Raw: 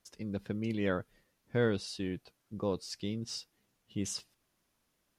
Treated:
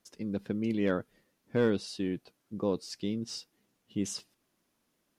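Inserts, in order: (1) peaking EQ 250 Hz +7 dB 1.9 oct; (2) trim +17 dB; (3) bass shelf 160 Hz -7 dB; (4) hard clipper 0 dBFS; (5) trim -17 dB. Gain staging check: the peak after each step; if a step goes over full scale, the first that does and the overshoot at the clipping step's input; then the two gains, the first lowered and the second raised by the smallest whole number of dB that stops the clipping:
-13.0 dBFS, +4.0 dBFS, +3.0 dBFS, 0.0 dBFS, -17.0 dBFS; step 2, 3.0 dB; step 2 +14 dB, step 5 -14 dB

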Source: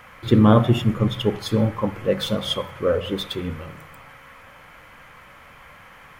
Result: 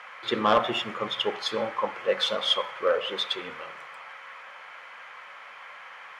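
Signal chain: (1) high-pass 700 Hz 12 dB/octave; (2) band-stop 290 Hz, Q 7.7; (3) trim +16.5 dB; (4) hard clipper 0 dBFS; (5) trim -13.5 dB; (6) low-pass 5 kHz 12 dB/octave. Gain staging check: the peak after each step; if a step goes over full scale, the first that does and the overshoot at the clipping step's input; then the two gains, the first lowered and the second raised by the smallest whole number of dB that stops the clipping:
-8.5 dBFS, -9.0 dBFS, +7.5 dBFS, 0.0 dBFS, -13.5 dBFS, -13.0 dBFS; step 3, 7.5 dB; step 3 +8.5 dB, step 5 -5.5 dB

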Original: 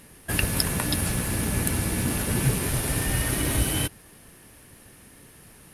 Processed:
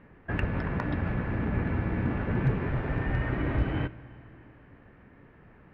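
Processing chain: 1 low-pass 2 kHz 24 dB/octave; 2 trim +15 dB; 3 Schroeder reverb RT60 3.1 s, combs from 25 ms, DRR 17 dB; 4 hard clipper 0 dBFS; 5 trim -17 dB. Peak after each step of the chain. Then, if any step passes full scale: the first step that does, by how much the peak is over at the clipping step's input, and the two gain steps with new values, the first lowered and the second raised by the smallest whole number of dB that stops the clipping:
-12.5 dBFS, +2.5 dBFS, +3.0 dBFS, 0.0 dBFS, -17.0 dBFS; step 2, 3.0 dB; step 2 +12 dB, step 5 -14 dB

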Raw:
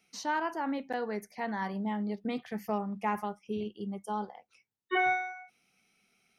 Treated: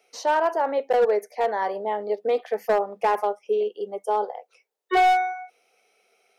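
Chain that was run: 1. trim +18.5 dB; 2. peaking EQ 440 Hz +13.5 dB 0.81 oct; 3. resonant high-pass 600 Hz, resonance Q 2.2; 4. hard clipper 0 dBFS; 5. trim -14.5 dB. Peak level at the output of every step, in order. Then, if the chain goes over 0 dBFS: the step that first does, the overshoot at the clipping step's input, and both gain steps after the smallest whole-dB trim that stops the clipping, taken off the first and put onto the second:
+1.5 dBFS, +5.5 dBFS, +6.5 dBFS, 0.0 dBFS, -14.5 dBFS; step 1, 6.5 dB; step 1 +11.5 dB, step 5 -7.5 dB

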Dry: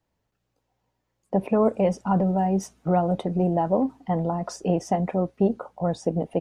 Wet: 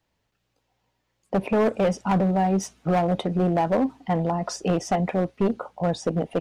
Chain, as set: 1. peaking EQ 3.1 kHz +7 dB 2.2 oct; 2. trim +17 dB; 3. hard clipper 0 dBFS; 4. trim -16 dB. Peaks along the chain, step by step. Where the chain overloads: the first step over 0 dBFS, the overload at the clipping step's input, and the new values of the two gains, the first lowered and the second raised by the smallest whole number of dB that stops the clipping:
-8.5 dBFS, +8.5 dBFS, 0.0 dBFS, -16.0 dBFS; step 2, 8.5 dB; step 2 +8 dB, step 4 -7 dB

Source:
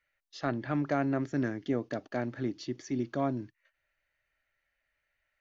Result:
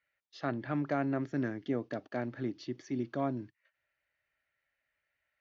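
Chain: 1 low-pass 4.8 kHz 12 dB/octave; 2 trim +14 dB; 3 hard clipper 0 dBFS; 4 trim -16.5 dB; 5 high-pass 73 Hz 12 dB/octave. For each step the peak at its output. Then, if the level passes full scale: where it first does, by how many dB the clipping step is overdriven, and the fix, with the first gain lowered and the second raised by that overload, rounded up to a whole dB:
-17.0 dBFS, -3.0 dBFS, -3.0 dBFS, -19.5 dBFS, -20.0 dBFS; nothing clips

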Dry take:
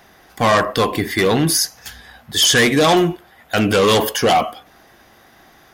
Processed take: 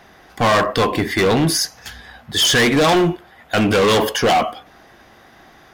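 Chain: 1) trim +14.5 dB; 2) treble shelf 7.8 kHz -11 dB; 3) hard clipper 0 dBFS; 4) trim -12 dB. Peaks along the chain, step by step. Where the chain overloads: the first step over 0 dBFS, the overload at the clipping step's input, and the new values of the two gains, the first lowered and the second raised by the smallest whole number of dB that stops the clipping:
+8.5 dBFS, +7.5 dBFS, 0.0 dBFS, -12.0 dBFS; step 1, 7.5 dB; step 1 +6.5 dB, step 4 -4 dB

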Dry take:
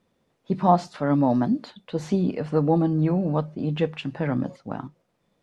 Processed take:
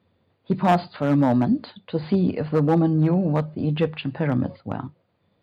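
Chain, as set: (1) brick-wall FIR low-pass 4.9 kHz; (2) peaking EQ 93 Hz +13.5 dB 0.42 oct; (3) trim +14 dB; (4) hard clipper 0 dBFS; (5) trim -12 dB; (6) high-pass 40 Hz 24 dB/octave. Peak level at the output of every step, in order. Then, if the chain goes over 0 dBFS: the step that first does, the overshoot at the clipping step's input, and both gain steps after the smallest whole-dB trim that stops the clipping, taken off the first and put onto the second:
-4.5 dBFS, -4.5 dBFS, +9.5 dBFS, 0.0 dBFS, -12.0 dBFS, -9.0 dBFS; step 3, 9.5 dB; step 3 +4 dB, step 5 -2 dB

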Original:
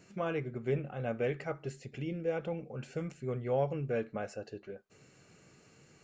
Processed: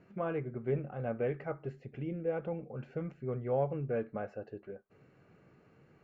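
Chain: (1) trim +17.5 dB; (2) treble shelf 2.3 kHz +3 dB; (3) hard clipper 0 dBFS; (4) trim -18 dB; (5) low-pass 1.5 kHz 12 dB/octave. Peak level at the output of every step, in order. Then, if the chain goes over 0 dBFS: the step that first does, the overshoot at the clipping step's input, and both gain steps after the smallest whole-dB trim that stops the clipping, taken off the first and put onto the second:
-3.0 dBFS, -3.0 dBFS, -3.0 dBFS, -21.0 dBFS, -21.0 dBFS; nothing clips

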